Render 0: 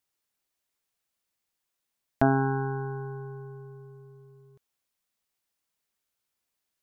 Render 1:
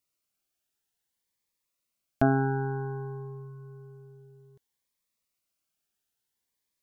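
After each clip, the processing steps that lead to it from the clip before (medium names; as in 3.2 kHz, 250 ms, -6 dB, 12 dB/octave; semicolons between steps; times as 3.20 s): Shepard-style phaser rising 0.57 Hz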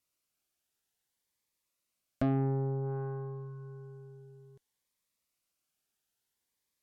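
low-pass that closes with the level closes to 460 Hz, closed at -29 dBFS; saturation -23.5 dBFS, distortion -11 dB; Chebyshev shaper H 4 -21 dB, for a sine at -23.5 dBFS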